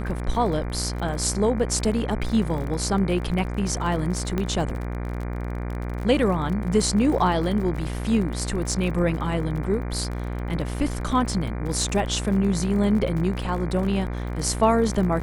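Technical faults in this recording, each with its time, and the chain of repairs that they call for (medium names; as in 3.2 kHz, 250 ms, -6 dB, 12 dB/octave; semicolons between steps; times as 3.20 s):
buzz 60 Hz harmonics 40 -29 dBFS
crackle 46 per s -31 dBFS
4.38 s: pop -13 dBFS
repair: de-click; de-hum 60 Hz, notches 40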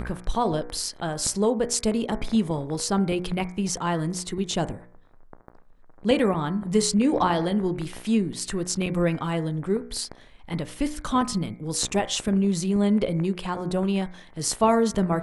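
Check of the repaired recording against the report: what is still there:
nothing left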